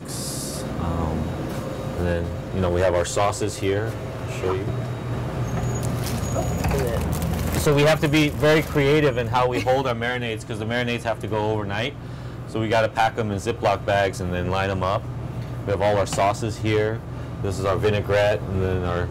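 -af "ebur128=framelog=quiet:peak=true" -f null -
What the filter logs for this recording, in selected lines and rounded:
Integrated loudness:
  I:         -23.2 LUFS
  Threshold: -33.3 LUFS
Loudness range:
  LRA:         5.2 LU
  Threshold: -43.1 LUFS
  LRA low:   -25.4 LUFS
  LRA high:  -20.1 LUFS
True peak:
  Peak:       -8.8 dBFS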